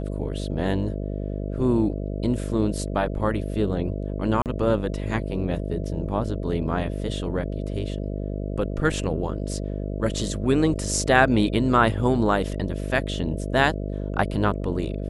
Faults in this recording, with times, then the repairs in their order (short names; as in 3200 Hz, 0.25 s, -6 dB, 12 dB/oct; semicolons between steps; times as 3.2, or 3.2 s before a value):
buzz 50 Hz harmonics 13 -29 dBFS
4.42–4.46 gap 38 ms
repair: de-hum 50 Hz, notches 13; interpolate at 4.42, 38 ms